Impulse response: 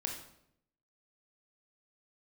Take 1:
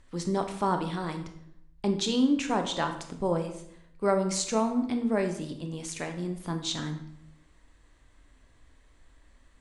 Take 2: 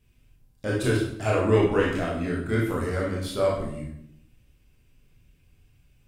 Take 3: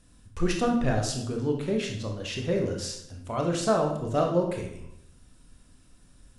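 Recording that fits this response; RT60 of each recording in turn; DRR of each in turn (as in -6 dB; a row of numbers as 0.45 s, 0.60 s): 3; 0.75 s, 0.75 s, 0.75 s; 5.5 dB, -5.0 dB, 1.0 dB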